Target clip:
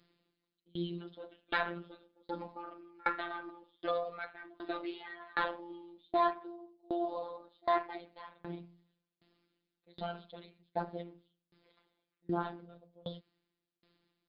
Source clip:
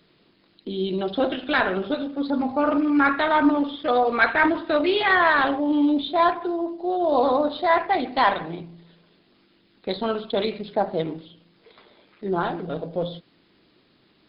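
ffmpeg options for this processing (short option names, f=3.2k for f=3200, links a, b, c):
-af "afftfilt=real='hypot(re,im)*cos(PI*b)':imag='0':win_size=1024:overlap=0.75,aeval=exprs='val(0)*pow(10,-30*if(lt(mod(1.3*n/s,1),2*abs(1.3)/1000),1-mod(1.3*n/s,1)/(2*abs(1.3)/1000),(mod(1.3*n/s,1)-2*abs(1.3)/1000)/(1-2*abs(1.3)/1000))/20)':c=same,volume=-5.5dB"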